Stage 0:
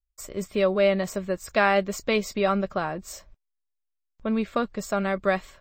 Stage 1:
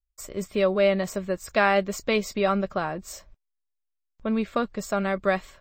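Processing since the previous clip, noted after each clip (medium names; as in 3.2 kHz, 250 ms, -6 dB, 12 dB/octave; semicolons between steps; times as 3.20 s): no audible change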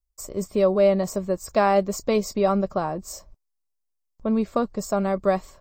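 high-order bell 2.3 kHz -10.5 dB; trim +3 dB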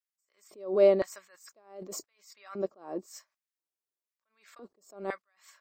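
LFO high-pass square 0.98 Hz 340–1700 Hz; attacks held to a fixed rise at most 130 dB/s; trim -5.5 dB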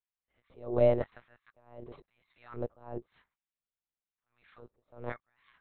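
monotone LPC vocoder at 8 kHz 120 Hz; trim -3 dB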